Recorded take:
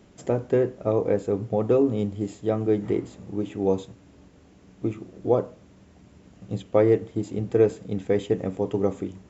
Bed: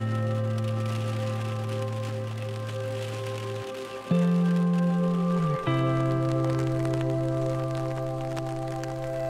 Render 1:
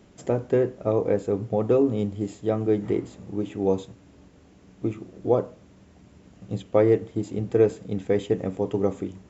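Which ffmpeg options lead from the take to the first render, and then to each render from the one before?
-af anull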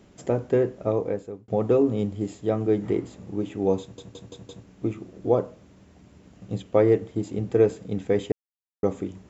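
-filter_complex "[0:a]asplit=9[s0][s1][s2][s3][s4][s5][s6][s7][s8];[s0]atrim=end=1.48,asetpts=PTS-STARTPTS,afade=t=out:st=0.84:d=0.64[s9];[s1]atrim=start=1.48:end=3.982,asetpts=PTS-STARTPTS,afade=t=in:d=0.004:c=hsin[s10];[s2]atrim=start=3.808:end=3.982[s11];[s3]atrim=start=3.808:end=3.982[s12];[s4]atrim=start=3.808:end=3.982[s13];[s5]atrim=start=3.808:end=3.982[s14];[s6]atrim=start=4.658:end=8.32,asetpts=PTS-STARTPTS,afade=t=out:st=3.658:d=0.004:c=hsin[s15];[s7]atrim=start=8.32:end=8.83,asetpts=PTS-STARTPTS,volume=0[s16];[s8]atrim=start=8.83,asetpts=PTS-STARTPTS,afade=t=in:d=0.004:c=hsin[s17];[s9][s10]concat=n=2:v=0:a=1[s18];[s18][s11]acrossfade=d=0.004:c1=hsin:c2=hsin[s19];[s19][s12]acrossfade=d=0.004:c1=hsin:c2=hsin[s20];[s20][s13]acrossfade=d=0.004:c1=hsin:c2=hsin[s21];[s21][s14]acrossfade=d=0.004:c1=hsin:c2=hsin[s22];[s15][s16][s17]concat=n=3:v=0:a=1[s23];[s22][s23]acrossfade=d=0.004:c1=hsin:c2=hsin"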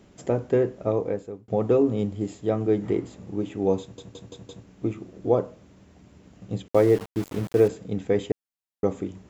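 -filter_complex "[0:a]asettb=1/sr,asplit=3[s0][s1][s2];[s0]atrim=end=6.684[s3];[s1]atrim=start=6.68:end=7.68,asetpts=PTS-STARTPTS,afade=t=in:d=0.004:c=qsin,afade=t=out:st=0.996:d=0.004:c=qsin,aeval=exprs='val(0)*gte(abs(val(0)),0.0211)':c=same[s4];[s2]atrim=start=7.676[s5];[s3][s4]acrossfade=d=0.004:c1=hsin:c2=qsin[s6];[s6][s5]acrossfade=d=0.004:c1=qsin:c2=hsin"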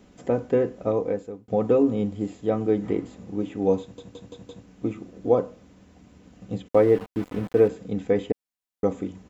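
-filter_complex "[0:a]acrossover=split=3200[s0][s1];[s1]acompressor=threshold=0.00178:ratio=4:attack=1:release=60[s2];[s0][s2]amix=inputs=2:normalize=0,aecho=1:1:4:0.36"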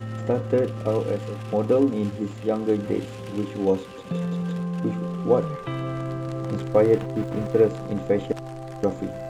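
-filter_complex "[1:a]volume=0.596[s0];[0:a][s0]amix=inputs=2:normalize=0"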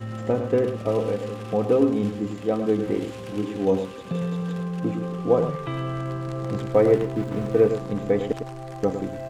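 -filter_complex "[0:a]asplit=2[s0][s1];[s1]adelay=105,volume=0.398,highshelf=f=4000:g=-2.36[s2];[s0][s2]amix=inputs=2:normalize=0"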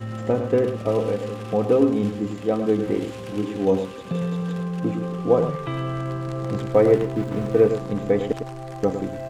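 -af "volume=1.19"

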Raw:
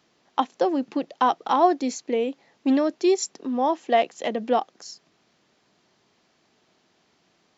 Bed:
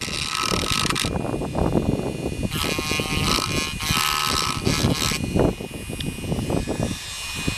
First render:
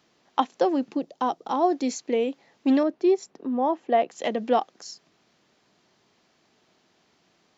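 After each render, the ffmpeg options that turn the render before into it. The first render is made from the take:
-filter_complex "[0:a]asplit=3[s0][s1][s2];[s0]afade=t=out:st=0.91:d=0.02[s3];[s1]equalizer=f=2000:t=o:w=2.5:g=-10.5,afade=t=in:st=0.91:d=0.02,afade=t=out:st=1.72:d=0.02[s4];[s2]afade=t=in:st=1.72:d=0.02[s5];[s3][s4][s5]amix=inputs=3:normalize=0,asettb=1/sr,asplit=3[s6][s7][s8];[s6]atrim=end=2.834[s9];[s7]atrim=start=2.83:end=4.1,asetpts=PTS-STARTPTS,afade=t=in:d=0.004:c=qsin,afade=t=out:st=1.266:d=0.004:c=qsin,lowpass=f=1100:p=1[s10];[s8]atrim=start=4.096[s11];[s9][s10]acrossfade=d=0.004:c1=hsin:c2=qsin[s12];[s12][s11]acrossfade=d=0.004:c1=qsin:c2=hsin"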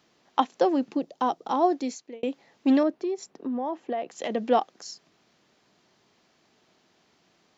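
-filter_complex "[0:a]asplit=3[s0][s1][s2];[s0]afade=t=out:st=2.94:d=0.02[s3];[s1]acompressor=threshold=0.0501:ratio=6:attack=3.2:release=140:knee=1:detection=peak,afade=t=in:st=2.94:d=0.02,afade=t=out:st=4.29:d=0.02[s4];[s2]afade=t=in:st=4.29:d=0.02[s5];[s3][s4][s5]amix=inputs=3:normalize=0,asplit=2[s6][s7];[s6]atrim=end=2.23,asetpts=PTS-STARTPTS,afade=t=out:st=1.64:d=0.59[s8];[s7]atrim=start=2.23,asetpts=PTS-STARTPTS,afade=t=in:d=0.004:c=hsin[s9];[s8][s9]concat=n=2:v=0:a=1"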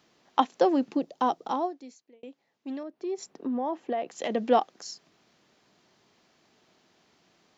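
-filter_complex "[0:a]asplit=3[s0][s1][s2];[s0]atrim=end=1.72,asetpts=PTS-STARTPTS,afade=t=out:st=1.45:d=0.27:silence=0.16788[s3];[s1]atrim=start=1.72:end=2.92,asetpts=PTS-STARTPTS,volume=0.168[s4];[s2]atrim=start=2.92,asetpts=PTS-STARTPTS,afade=t=in:d=0.27:silence=0.16788[s5];[s3][s4][s5]concat=n=3:v=0:a=1"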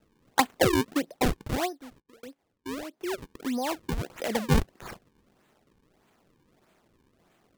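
-af "acrusher=samples=38:mix=1:aa=0.000001:lfo=1:lforange=60.8:lforate=1.6"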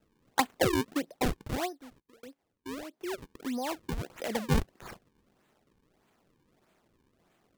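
-af "volume=0.631"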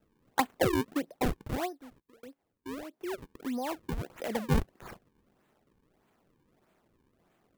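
-af "equalizer=f=5400:w=0.49:g=-5"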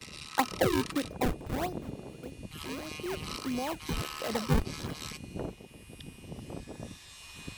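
-filter_complex "[1:a]volume=0.119[s0];[0:a][s0]amix=inputs=2:normalize=0"

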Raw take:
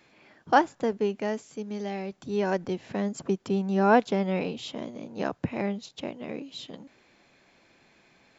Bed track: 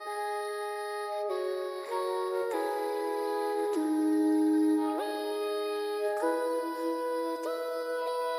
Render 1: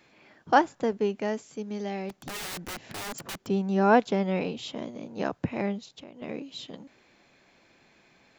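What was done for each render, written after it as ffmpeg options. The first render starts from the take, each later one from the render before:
-filter_complex "[0:a]asplit=3[s0][s1][s2];[s0]afade=t=out:st=2.09:d=0.02[s3];[s1]aeval=exprs='(mod(37.6*val(0)+1,2)-1)/37.6':c=same,afade=t=in:st=2.09:d=0.02,afade=t=out:st=3.45:d=0.02[s4];[s2]afade=t=in:st=3.45:d=0.02[s5];[s3][s4][s5]amix=inputs=3:normalize=0,asettb=1/sr,asplit=3[s6][s7][s8];[s6]atrim=end=5.794[s9];[s7]atrim=start=5.79:end=6.22,asetpts=PTS-STARTPTS,afade=t=in:d=0.004:c=qsin,afade=t=out:st=0.426:d=0.004:c=qsin,acompressor=threshold=0.00708:ratio=4:attack=3.2:release=140:knee=1:detection=peak[s10];[s8]atrim=start=6.216[s11];[s9][s10]acrossfade=d=0.004:c1=hsin:c2=qsin[s12];[s12][s11]acrossfade=d=0.004:c1=qsin:c2=hsin"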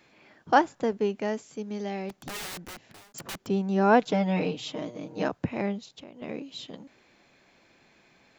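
-filter_complex "[0:a]asettb=1/sr,asplit=3[s0][s1][s2];[s0]atrim=end=4.014[s3];[s1]atrim=start=4.01:end=5.28,asetpts=PTS-STARTPTS,afade=t=in:d=0.004:c=qsin,afade=t=out:st=1.266:d=0.004:c=qsin,aecho=1:1:6.5:0.77,atrim=end_sample=56007[s4];[s2]atrim=start=5.276[s5];[s3][s4]acrossfade=d=0.004:c1=hsin:c2=qsin[s6];[s6][s5]acrossfade=d=0.004:c1=qsin:c2=hsin,asplit=2[s7][s8];[s7]atrim=end=3.14,asetpts=PTS-STARTPTS,afade=t=out:st=2.39:d=0.75[s9];[s8]atrim=start=3.14,asetpts=PTS-STARTPTS,afade=t=in:d=0.004:c=hsin[s10];[s9][s10]concat=n=2:v=0:a=1"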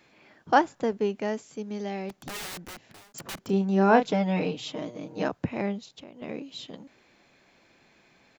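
-filter_complex "[0:a]asplit=3[s0][s1][s2];[s0]afade=t=out:st=3.37:d=0.02[s3];[s1]asplit=2[s4][s5];[s5]adelay=31,volume=0.376[s6];[s4][s6]amix=inputs=2:normalize=0,afade=t=in:st=3.37:d=0.02,afade=t=out:st=4.1:d=0.02[s7];[s2]afade=t=in:st=4.1:d=0.02[s8];[s3][s7][s8]amix=inputs=3:normalize=0"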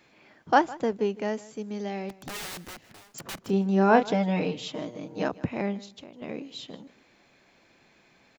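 -af "aecho=1:1:156|312:0.1|0.016"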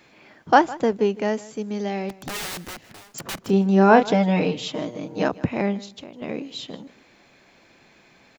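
-af "volume=2,alimiter=limit=0.794:level=0:latency=1"

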